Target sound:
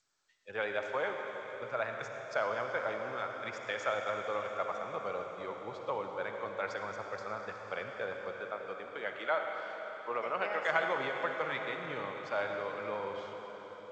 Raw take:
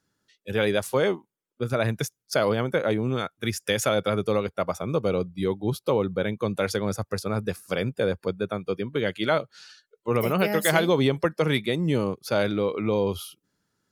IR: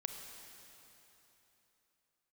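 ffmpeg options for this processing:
-filter_complex "[0:a]asplit=3[s0][s1][s2];[s0]afade=t=out:st=8.33:d=0.02[s3];[s1]highpass=210,lowpass=6100,afade=t=in:st=8.33:d=0.02,afade=t=out:st=10.67:d=0.02[s4];[s2]afade=t=in:st=10.67:d=0.02[s5];[s3][s4][s5]amix=inputs=3:normalize=0,acrossover=split=550 2200:gain=0.0794 1 0.141[s6][s7][s8];[s6][s7][s8]amix=inputs=3:normalize=0[s9];[1:a]atrim=start_sample=2205,asetrate=29547,aresample=44100[s10];[s9][s10]afir=irnorm=-1:irlink=0,adynamicequalizer=threshold=0.00631:dfrequency=420:dqfactor=1.5:tfrequency=420:tqfactor=1.5:attack=5:release=100:ratio=0.375:range=2:mode=cutabove:tftype=bell,volume=0.631" -ar 16000 -c:a g722

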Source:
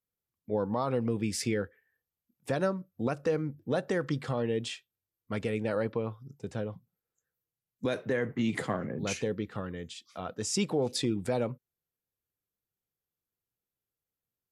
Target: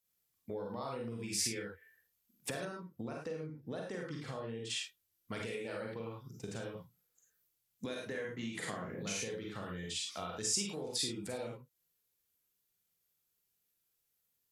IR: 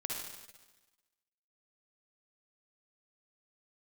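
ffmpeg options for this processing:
-filter_complex "[1:a]atrim=start_sample=2205,afade=t=out:st=0.2:d=0.01,atrim=end_sample=9261,asetrate=61740,aresample=44100[s0];[0:a][s0]afir=irnorm=-1:irlink=0,acompressor=threshold=0.00708:ratio=6,asetnsamples=n=441:p=0,asendcmd='2.65 highshelf g 4;4.7 highshelf g 11.5',highshelf=f=2000:g=12,volume=1.41"

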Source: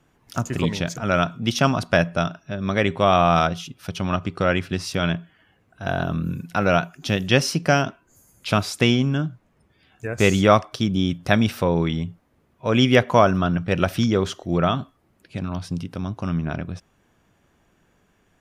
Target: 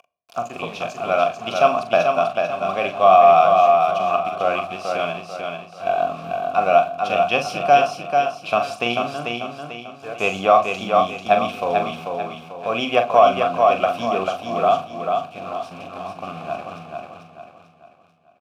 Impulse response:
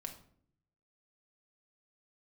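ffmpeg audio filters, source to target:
-filter_complex "[0:a]aeval=exprs='if(lt(val(0),0),0.708*val(0),val(0))':c=same,aemphasis=mode=production:type=50kf,acompressor=mode=upward:threshold=0.0178:ratio=2.5,acrusher=bits=5:mix=0:aa=0.000001,asplit=3[s0][s1][s2];[s0]bandpass=f=730:t=q:w=8,volume=1[s3];[s1]bandpass=f=1090:t=q:w=8,volume=0.501[s4];[s2]bandpass=f=2440:t=q:w=8,volume=0.355[s5];[s3][s4][s5]amix=inputs=3:normalize=0,asplit=2[s6][s7];[s7]adelay=42,volume=0.398[s8];[s6][s8]amix=inputs=2:normalize=0,aecho=1:1:442|884|1326|1768|2210:0.596|0.238|0.0953|0.0381|0.0152,asplit=2[s9][s10];[1:a]atrim=start_sample=2205,lowshelf=f=260:g=8.5[s11];[s10][s11]afir=irnorm=-1:irlink=0,volume=0.473[s12];[s9][s12]amix=inputs=2:normalize=0,alimiter=level_in=3.35:limit=0.891:release=50:level=0:latency=1,volume=0.891"

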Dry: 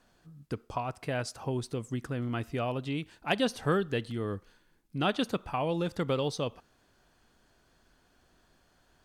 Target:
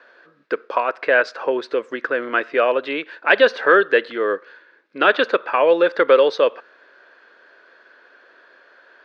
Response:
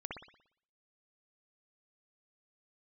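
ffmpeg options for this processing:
-af "apsyclip=12.6,highpass=f=400:w=0.5412,highpass=f=400:w=1.3066,equalizer=f=530:t=q:w=4:g=5,equalizer=f=770:t=q:w=4:g=-9,equalizer=f=1600:t=q:w=4:g=9,equalizer=f=3100:t=q:w=4:g=-6,lowpass=f=3600:w=0.5412,lowpass=f=3600:w=1.3066,volume=0.531"

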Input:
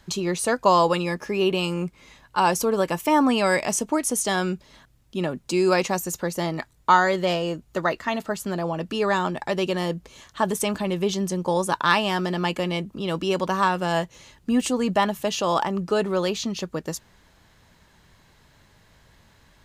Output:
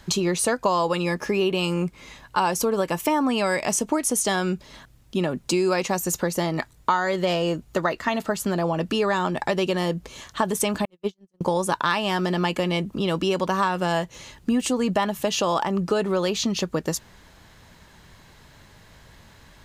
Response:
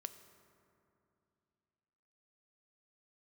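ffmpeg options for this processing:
-filter_complex "[0:a]asettb=1/sr,asplit=3[s0][s1][s2];[s0]atrim=end=10.854[s3];[s1]atrim=start=10.85:end=11.41,asetpts=PTS-STARTPTS,afade=t=in:d=0.004:c=qsin,afade=t=out:st=0.556:d=0.004:c=qsin,agate=range=0.00141:threshold=0.112:ratio=16:detection=peak[s4];[s2]atrim=start=11.406[s5];[s3][s4]acrossfade=d=0.004:c1=hsin:c2=qsin[s6];[s6][s5]acrossfade=d=0.004:c1=qsin:c2=hsin,acompressor=threshold=0.0501:ratio=4,volume=2"

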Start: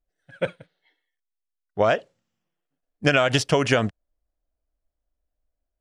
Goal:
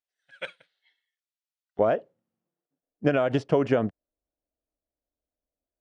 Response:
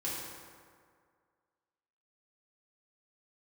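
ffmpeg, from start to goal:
-af "asetnsamples=n=441:p=0,asendcmd='1.79 bandpass f 340',bandpass=f=3700:t=q:w=0.7:csg=0"

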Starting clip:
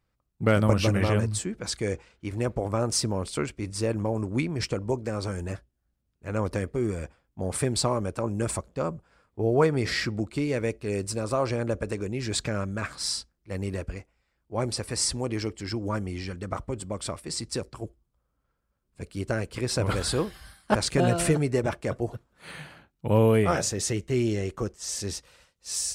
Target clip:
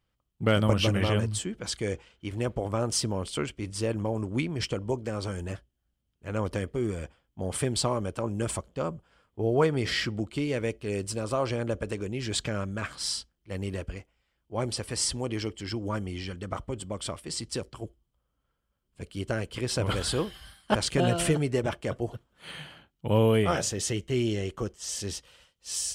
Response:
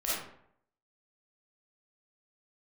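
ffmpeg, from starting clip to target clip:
-af "equalizer=f=3100:w=6.1:g=11.5,volume=0.794"

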